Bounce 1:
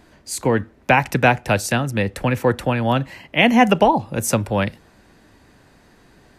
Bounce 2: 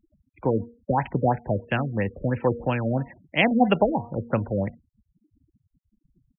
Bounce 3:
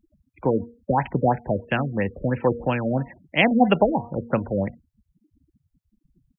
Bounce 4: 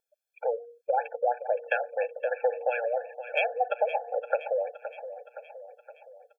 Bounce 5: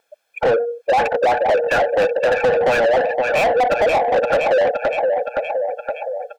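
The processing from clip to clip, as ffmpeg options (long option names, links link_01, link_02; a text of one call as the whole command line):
ffmpeg -i in.wav -af "bandreject=frequency=236.6:width_type=h:width=4,bandreject=frequency=473.2:width_type=h:width=4,bandreject=frequency=709.8:width_type=h:width=4,bandreject=frequency=946.4:width_type=h:width=4,afftfilt=real='re*gte(hypot(re,im),0.0178)':imag='im*gte(hypot(re,im),0.0178)':win_size=1024:overlap=0.75,afftfilt=real='re*lt(b*sr/1024,570*pow(3400/570,0.5+0.5*sin(2*PI*3*pts/sr)))':imag='im*lt(b*sr/1024,570*pow(3400/570,0.5+0.5*sin(2*PI*3*pts/sr)))':win_size=1024:overlap=0.75,volume=-4.5dB" out.wav
ffmpeg -i in.wav -af "equalizer=frequency=110:width=7.5:gain=-8,volume=2dB" out.wav
ffmpeg -i in.wav -af "acompressor=threshold=-25dB:ratio=6,aecho=1:1:518|1036|1554|2072|2590|3108:0.237|0.13|0.0717|0.0395|0.0217|0.0119,afftfilt=real='re*eq(mod(floor(b*sr/1024/450),2),1)':imag='im*eq(mod(floor(b*sr/1024/450),2),1)':win_size=1024:overlap=0.75,volume=5dB" out.wav
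ffmpeg -i in.wav -filter_complex "[0:a]asplit=2[link_01][link_02];[link_02]highpass=frequency=720:poles=1,volume=33dB,asoftclip=type=tanh:threshold=-10.5dB[link_03];[link_01][link_03]amix=inputs=2:normalize=0,lowpass=frequency=1500:poles=1,volume=-6dB,volume=3dB" out.wav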